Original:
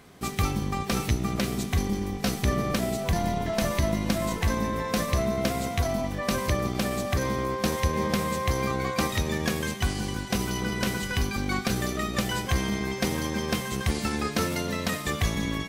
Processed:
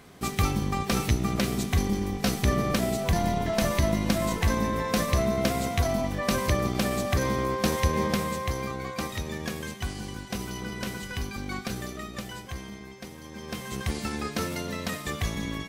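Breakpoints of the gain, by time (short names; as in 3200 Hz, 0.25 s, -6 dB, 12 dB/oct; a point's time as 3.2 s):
7.98 s +1 dB
8.75 s -6 dB
11.68 s -6 dB
13.18 s -16 dB
13.74 s -3.5 dB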